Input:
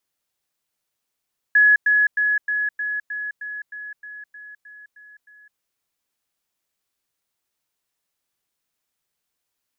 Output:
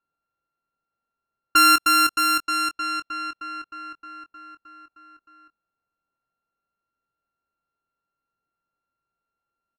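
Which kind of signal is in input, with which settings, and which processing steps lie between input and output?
level staircase 1,690 Hz −10.5 dBFS, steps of −3 dB, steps 13, 0.21 s 0.10 s
samples sorted by size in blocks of 32 samples
low-pass that shuts in the quiet parts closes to 1,600 Hz, open at −18.5 dBFS
double-tracking delay 23 ms −10 dB

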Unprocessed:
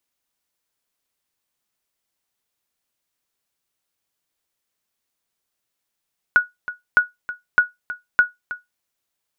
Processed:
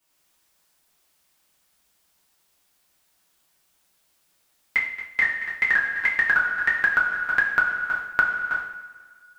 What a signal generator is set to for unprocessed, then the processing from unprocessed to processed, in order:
ping with an echo 1,460 Hz, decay 0.17 s, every 0.61 s, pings 4, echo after 0.32 s, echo −15 dB −5 dBFS
coupled-rooms reverb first 0.59 s, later 1.8 s, from −18 dB, DRR −10 dB
delay with pitch and tempo change per echo 87 ms, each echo +2 semitones, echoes 3
downward compressor 6 to 1, threshold −18 dBFS

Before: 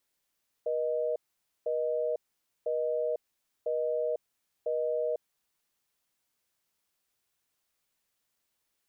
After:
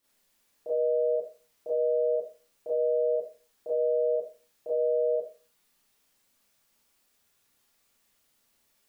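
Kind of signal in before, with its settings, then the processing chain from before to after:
call progress tone busy tone, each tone −30 dBFS 4.90 s
low-shelf EQ 390 Hz +3 dB
brickwall limiter −31 dBFS
four-comb reverb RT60 0.36 s, combs from 27 ms, DRR −8.5 dB

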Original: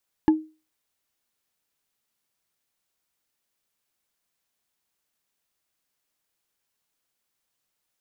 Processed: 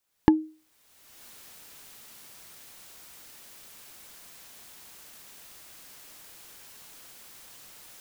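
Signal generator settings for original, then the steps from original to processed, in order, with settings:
struck wood bar, lowest mode 313 Hz, decay 0.31 s, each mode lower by 9.5 dB, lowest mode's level −10.5 dB
camcorder AGC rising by 32 dB per second

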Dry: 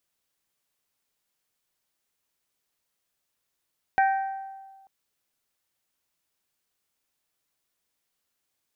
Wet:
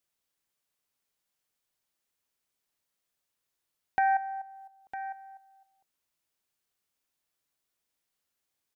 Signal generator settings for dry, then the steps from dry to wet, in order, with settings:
struck glass bell, lowest mode 777 Hz, modes 4, decay 1.49 s, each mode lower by 6.5 dB, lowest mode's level −17 dB
dynamic equaliser 980 Hz, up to +4 dB, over −36 dBFS, Q 0.93
output level in coarse steps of 12 dB
on a send: single-tap delay 955 ms −12.5 dB

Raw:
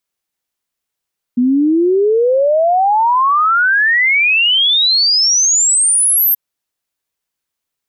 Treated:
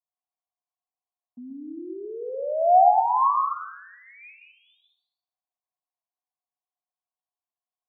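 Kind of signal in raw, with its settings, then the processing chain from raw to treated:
exponential sine sweep 240 Hz → 13,000 Hz 4.98 s −9 dBFS
formant resonators in series a
high-frequency loss of the air 430 metres
dense smooth reverb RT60 0.63 s, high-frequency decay 0.95×, pre-delay 110 ms, DRR 3 dB

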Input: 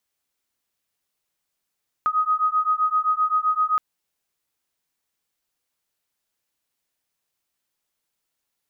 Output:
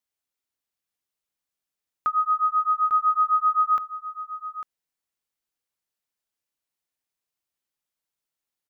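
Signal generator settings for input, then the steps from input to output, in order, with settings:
two tones that beat 1,250 Hz, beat 7.7 Hz, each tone −21.5 dBFS 1.72 s
on a send: single-tap delay 849 ms −8 dB
on the sum: expander for the loud parts 1.5 to 1, over −35 dBFS

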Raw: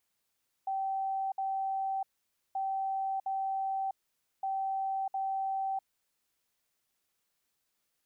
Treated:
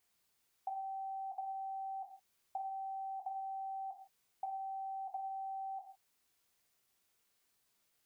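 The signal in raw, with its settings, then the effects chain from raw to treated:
beeps in groups sine 774 Hz, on 0.65 s, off 0.06 s, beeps 2, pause 0.52 s, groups 3, −30 dBFS
downward compressor 5 to 1, threshold −40 dBFS
reverb whose tail is shaped and stops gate 190 ms falling, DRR 2.5 dB

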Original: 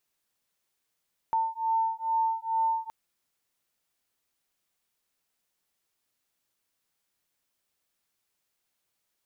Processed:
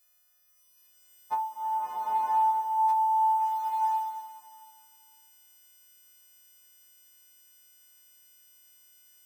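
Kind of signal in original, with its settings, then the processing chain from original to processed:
two tones that beat 898 Hz, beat 2.3 Hz, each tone −28 dBFS 1.57 s
every partial snapped to a pitch grid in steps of 3 semitones
on a send: flutter between parallel walls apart 4.4 metres, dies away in 0.21 s
on the sum: slow-attack reverb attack 990 ms, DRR −7.5 dB

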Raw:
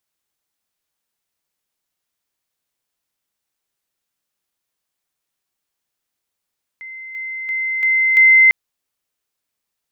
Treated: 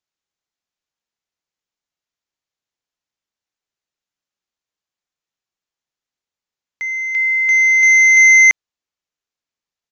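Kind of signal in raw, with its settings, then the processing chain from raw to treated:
level staircase 2,070 Hz −30.5 dBFS, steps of 6 dB, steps 5, 0.34 s 0.00 s
leveller curve on the samples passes 3
downsampling to 16,000 Hz

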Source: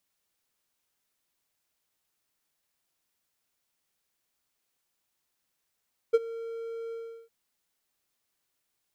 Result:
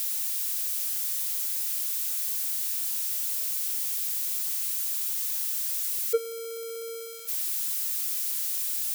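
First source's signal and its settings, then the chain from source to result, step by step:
note with an ADSR envelope triangle 458 Hz, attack 17 ms, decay 34 ms, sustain −19.5 dB, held 0.79 s, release 368 ms −13 dBFS
spike at every zero crossing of −26 dBFS

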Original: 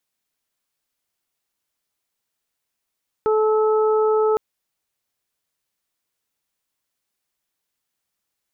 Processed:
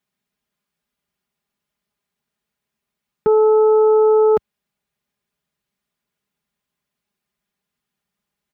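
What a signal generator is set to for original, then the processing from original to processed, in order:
steady harmonic partials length 1.11 s, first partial 433 Hz, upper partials −10/−10.5 dB, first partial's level −15.5 dB
high-pass filter 70 Hz 12 dB per octave
bass and treble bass +11 dB, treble −8 dB
comb filter 4.9 ms, depth 79%

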